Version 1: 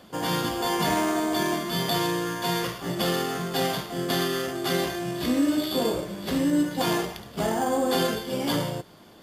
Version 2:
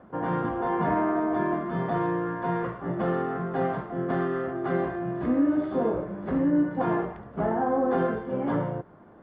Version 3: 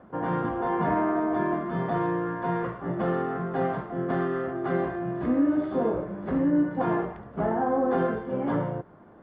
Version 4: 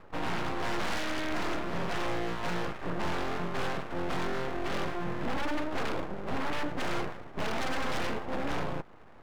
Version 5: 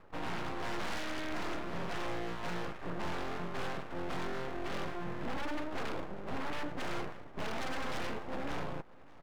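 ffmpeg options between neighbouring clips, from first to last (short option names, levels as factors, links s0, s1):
-af "lowpass=f=1600:w=0.5412,lowpass=f=1600:w=1.3066"
-af anull
-af "aeval=exprs='0.211*(cos(1*acos(clip(val(0)/0.211,-1,1)))-cos(1*PI/2))+0.106*(cos(3*acos(clip(val(0)/0.211,-1,1)))-cos(3*PI/2))+0.0596*(cos(7*acos(clip(val(0)/0.211,-1,1)))-cos(7*PI/2))+0.0531*(cos(8*acos(clip(val(0)/0.211,-1,1)))-cos(8*PI/2))':c=same,aeval=exprs='abs(val(0))':c=same,volume=0.422"
-af "aecho=1:1:592:0.0708,volume=0.531"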